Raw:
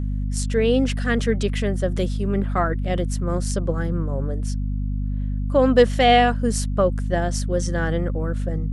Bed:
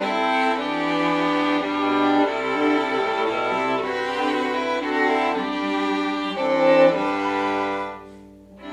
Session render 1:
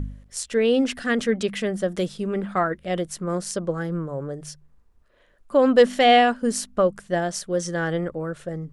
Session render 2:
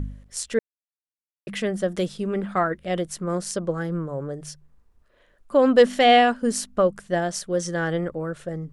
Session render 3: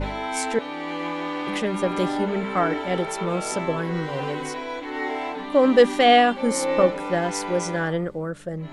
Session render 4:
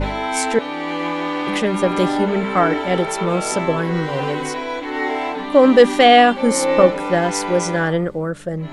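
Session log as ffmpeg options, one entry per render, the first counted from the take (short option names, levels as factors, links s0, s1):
-af "bandreject=f=50:t=h:w=4,bandreject=f=100:t=h:w=4,bandreject=f=150:t=h:w=4,bandreject=f=200:t=h:w=4,bandreject=f=250:t=h:w=4"
-filter_complex "[0:a]asplit=3[s0][s1][s2];[s0]atrim=end=0.59,asetpts=PTS-STARTPTS,afade=t=out:st=0.586:d=0.004:c=hsin[s3];[s1]atrim=start=0.59:end=1.47,asetpts=PTS-STARTPTS,volume=0[s4];[s2]atrim=start=1.47,asetpts=PTS-STARTPTS,afade=t=in:d=0.004:c=hsin[s5];[s3][s4][s5]concat=n=3:v=0:a=1"
-filter_complex "[1:a]volume=0.398[s0];[0:a][s0]amix=inputs=2:normalize=0"
-af "volume=2,alimiter=limit=0.891:level=0:latency=1"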